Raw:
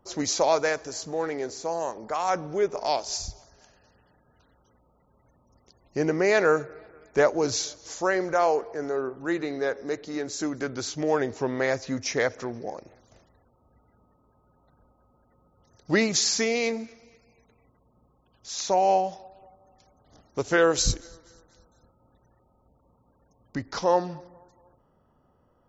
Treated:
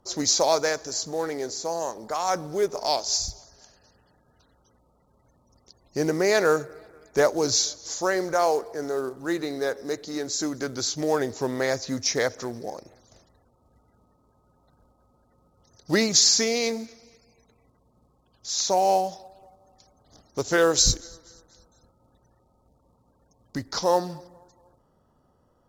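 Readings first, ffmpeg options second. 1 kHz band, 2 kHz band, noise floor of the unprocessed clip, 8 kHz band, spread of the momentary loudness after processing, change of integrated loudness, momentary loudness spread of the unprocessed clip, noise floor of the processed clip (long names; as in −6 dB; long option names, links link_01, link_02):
0.0 dB, −1.0 dB, −66 dBFS, can't be measured, 13 LU, +2.0 dB, 13 LU, −65 dBFS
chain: -af "acrusher=bits=7:mode=log:mix=0:aa=0.000001,aexciter=amount=4.7:drive=5.1:freq=3800,aemphasis=mode=reproduction:type=50fm"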